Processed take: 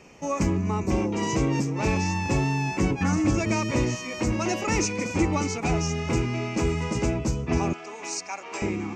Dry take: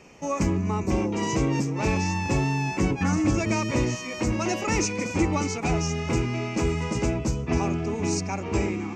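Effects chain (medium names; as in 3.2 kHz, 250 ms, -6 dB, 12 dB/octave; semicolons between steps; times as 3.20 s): 7.73–8.62 s: high-pass 760 Hz 12 dB/octave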